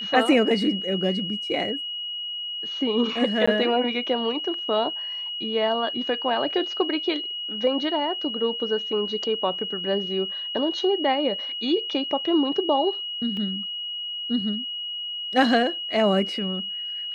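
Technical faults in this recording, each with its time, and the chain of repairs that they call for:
whistle 2,900 Hz −29 dBFS
0:03.46–0:03.48: drop-out 15 ms
0:13.37: drop-out 2.3 ms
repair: notch filter 2,900 Hz, Q 30
repair the gap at 0:03.46, 15 ms
repair the gap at 0:13.37, 2.3 ms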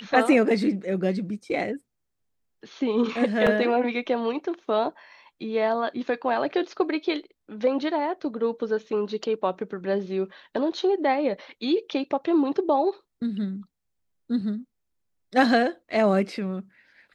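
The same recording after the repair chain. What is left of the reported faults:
none of them is left

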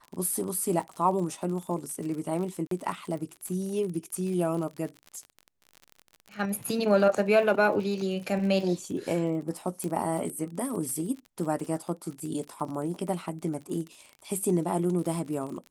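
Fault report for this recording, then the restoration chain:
surface crackle 39 per second −35 dBFS
0:02.67–0:02.71: drop-out 43 ms
0:09.84: click −20 dBFS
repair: click removal
repair the gap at 0:02.67, 43 ms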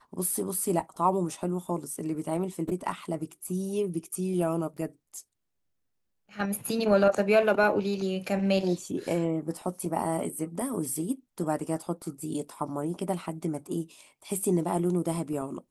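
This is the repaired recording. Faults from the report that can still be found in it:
none of them is left

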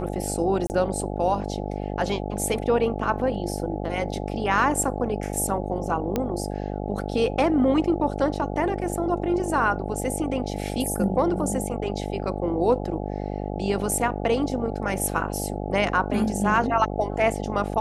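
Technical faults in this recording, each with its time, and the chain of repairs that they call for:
mains buzz 50 Hz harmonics 17 −30 dBFS
0:00.67–0:00.70: drop-out 29 ms
0:06.16: click −11 dBFS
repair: click removal
hum removal 50 Hz, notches 17
repair the gap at 0:00.67, 29 ms

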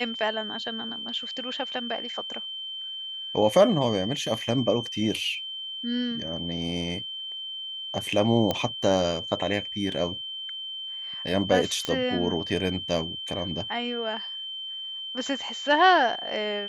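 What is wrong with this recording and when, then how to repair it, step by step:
whistle 3,100 Hz −33 dBFS
0:08.51: click −11 dBFS
0:11.85: click −13 dBFS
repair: click removal
notch filter 3,100 Hz, Q 30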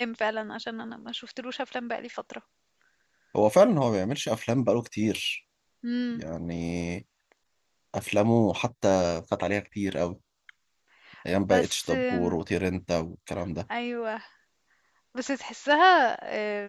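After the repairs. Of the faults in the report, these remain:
none of them is left

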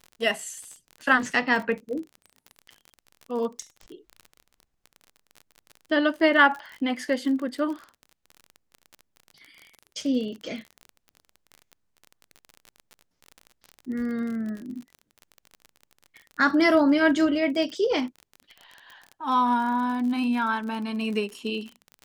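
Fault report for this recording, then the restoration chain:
surface crackle 37 per second −33 dBFS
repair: click removal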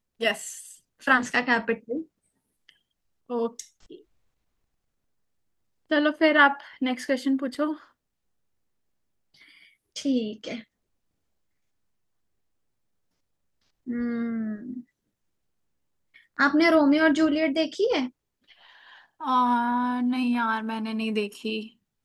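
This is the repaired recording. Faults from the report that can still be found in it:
none of them is left

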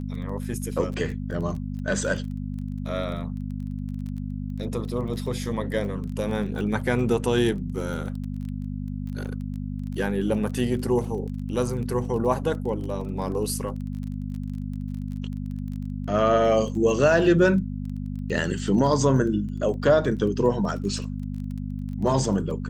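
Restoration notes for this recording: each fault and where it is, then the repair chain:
surface crackle 23 per second −34 dBFS
mains hum 50 Hz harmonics 5 −31 dBFS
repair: click removal
hum removal 50 Hz, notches 5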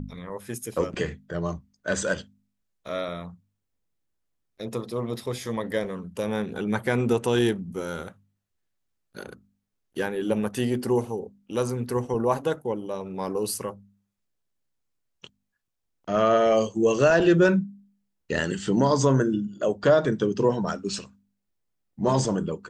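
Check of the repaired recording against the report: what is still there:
none of them is left

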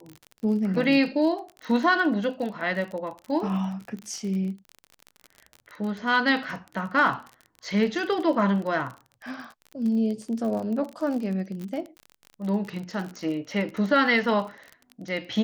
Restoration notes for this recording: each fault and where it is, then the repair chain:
surface crackle 37 per second −32 dBFS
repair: click removal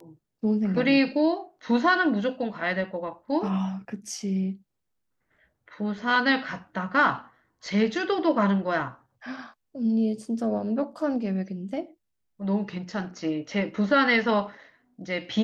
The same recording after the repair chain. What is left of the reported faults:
none of them is left

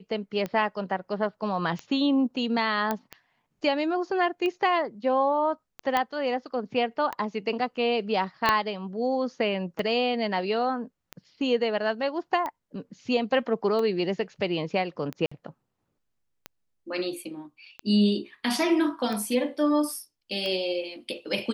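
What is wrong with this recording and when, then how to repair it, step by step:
scratch tick 45 rpm −19 dBFS
0:02.91: click −13 dBFS
0:05.97: click −11 dBFS
0:08.49: click −7 dBFS
0:15.26–0:15.31: drop-out 55 ms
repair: click removal
repair the gap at 0:15.26, 55 ms

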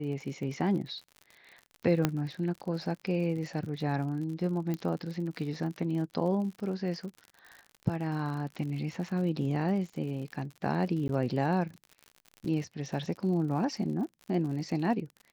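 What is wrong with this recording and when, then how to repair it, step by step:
surface crackle 58 per second −39 dBFS
0:02.05: click −11 dBFS
0:04.74: click −21 dBFS
0:11.08–0:11.09: drop-out 11 ms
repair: click removal
repair the gap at 0:11.08, 11 ms

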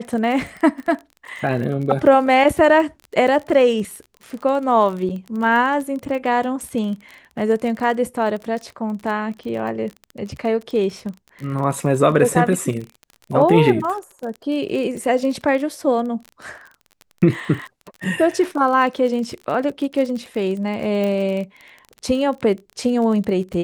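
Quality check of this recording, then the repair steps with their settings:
surface crackle 32 per second −27 dBFS
0:05.09–0:05.10: drop-out 7.5 ms
0:21.04: click −14 dBFS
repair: click removal
repair the gap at 0:05.09, 7.5 ms

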